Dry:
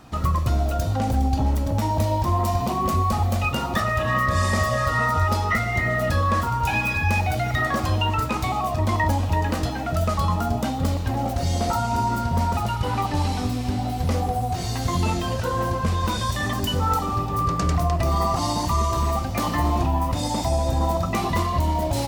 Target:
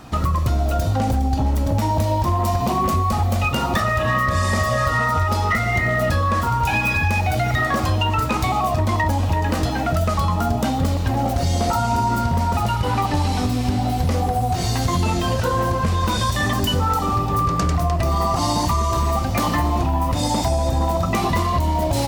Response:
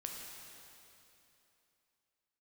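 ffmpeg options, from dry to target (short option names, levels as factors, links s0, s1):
-af "acompressor=threshold=0.0794:ratio=6,volume=8.41,asoftclip=hard,volume=0.119,volume=2.11"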